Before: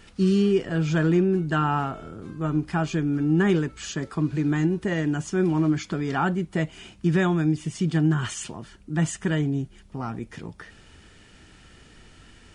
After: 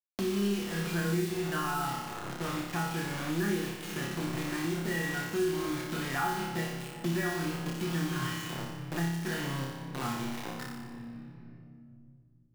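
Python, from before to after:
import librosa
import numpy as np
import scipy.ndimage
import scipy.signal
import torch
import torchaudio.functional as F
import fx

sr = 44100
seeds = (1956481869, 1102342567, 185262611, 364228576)

p1 = scipy.signal.medfilt(x, 9)
p2 = fx.env_lowpass_down(p1, sr, base_hz=1900.0, full_db=-19.0)
p3 = fx.peak_eq(p2, sr, hz=4400.0, db=12.5, octaves=2.7)
p4 = fx.level_steps(p3, sr, step_db=10)
p5 = p3 + F.gain(torch.from_numpy(p4), -2.0).numpy()
p6 = fx.comb_fb(p5, sr, f0_hz=120.0, decay_s=0.37, harmonics='all', damping=0.0, mix_pct=90)
p7 = fx.quant_dither(p6, sr, seeds[0], bits=6, dither='none')
p8 = p7 + fx.room_flutter(p7, sr, wall_m=5.1, rt60_s=0.74, dry=0)
p9 = fx.room_shoebox(p8, sr, seeds[1], volume_m3=3500.0, walls='mixed', distance_m=0.89)
p10 = fx.band_squash(p9, sr, depth_pct=70)
y = F.gain(torch.from_numpy(p10), -6.0).numpy()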